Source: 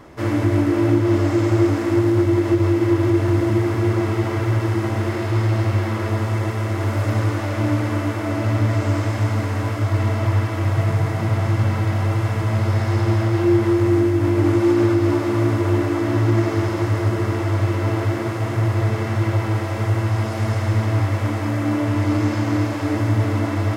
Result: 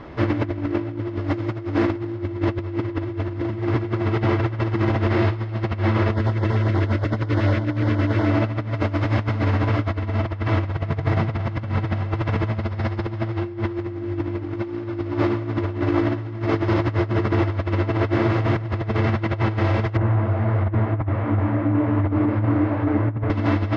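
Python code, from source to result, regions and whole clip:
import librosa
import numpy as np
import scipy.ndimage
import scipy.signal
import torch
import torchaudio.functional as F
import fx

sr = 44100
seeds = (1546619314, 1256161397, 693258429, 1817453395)

y = fx.chain(x, sr, fx.filter_lfo_notch(shape='square', hz=8.3, low_hz=810.0, high_hz=2500.0, q=1.6),
    fx.notch(hz=1200.0, q=12.0), at=(6.14, 8.3))
y = fx.chain(y, sr, fx.lowpass(hz=1600.0, slope=12),
    fx.detune_double(cents=49), at=(19.97, 23.3))
y = scipy.signal.sosfilt(scipy.signal.butter(4, 4400.0, 'lowpass', fs=sr, output='sos'), y)
y = fx.low_shelf(y, sr, hz=160.0, db=3.0)
y = fx.over_compress(y, sr, threshold_db=-21.0, ratio=-0.5)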